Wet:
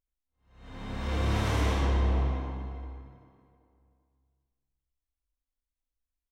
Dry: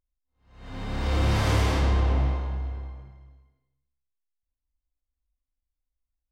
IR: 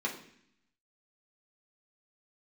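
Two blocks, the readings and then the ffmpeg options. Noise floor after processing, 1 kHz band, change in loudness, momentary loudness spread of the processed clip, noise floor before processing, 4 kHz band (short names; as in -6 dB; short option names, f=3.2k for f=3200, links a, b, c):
under -85 dBFS, -3.5 dB, -4.0 dB, 17 LU, under -85 dBFS, -5.0 dB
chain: -filter_complex "[0:a]bandreject=f=4.7k:w=12,asplit=2[a][b];[b]adelay=388,lowpass=f=2.7k:p=1,volume=-17dB,asplit=2[c][d];[d]adelay=388,lowpass=f=2.7k:p=1,volume=0.45,asplit=2[e][f];[f]adelay=388,lowpass=f=2.7k:p=1,volume=0.45,asplit=2[g][h];[h]adelay=388,lowpass=f=2.7k:p=1,volume=0.45[i];[a][c][e][g][i]amix=inputs=5:normalize=0,asplit=2[j][k];[1:a]atrim=start_sample=2205,adelay=75[l];[k][l]afir=irnorm=-1:irlink=0,volume=-7dB[m];[j][m]amix=inputs=2:normalize=0,volume=-6dB"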